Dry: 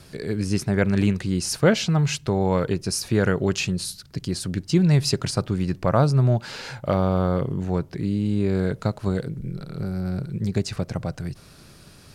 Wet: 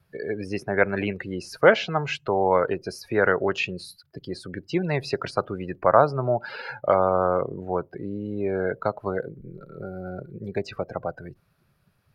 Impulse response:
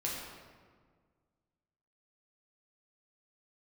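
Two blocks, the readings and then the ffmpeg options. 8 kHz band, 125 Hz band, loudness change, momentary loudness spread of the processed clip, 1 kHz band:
under -15 dB, -11.5 dB, -1.5 dB, 17 LU, +5.5 dB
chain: -filter_complex "[0:a]afftdn=nr=23:nf=-36,acrossover=split=4500[a][b];[b]acompressor=threshold=-41dB:ratio=4:attack=1:release=60[c];[a][c]amix=inputs=2:normalize=0,acrossover=split=430 2800:gain=0.112 1 0.2[d][e][f];[d][e][f]amix=inputs=3:normalize=0,aexciter=amount=6.3:drive=3.8:freq=11k,volume=6.5dB"

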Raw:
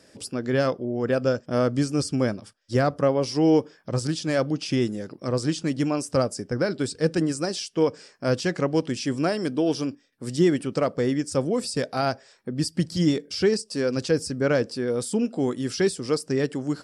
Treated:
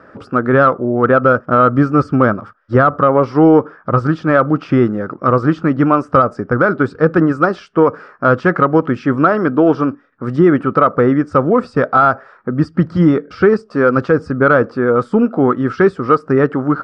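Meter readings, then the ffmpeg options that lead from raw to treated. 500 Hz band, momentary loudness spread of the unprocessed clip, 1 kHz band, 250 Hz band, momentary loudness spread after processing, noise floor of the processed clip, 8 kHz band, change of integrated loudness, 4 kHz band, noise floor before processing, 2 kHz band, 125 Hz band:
+10.5 dB, 6 LU, +18.0 dB, +10.5 dB, 6 LU, -46 dBFS, under -15 dB, +11.0 dB, n/a, -58 dBFS, +14.0 dB, +10.0 dB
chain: -af "lowpass=f=1.3k:t=q:w=6.9,alimiter=limit=-12dB:level=0:latency=1:release=86,acontrast=39,volume=5.5dB"

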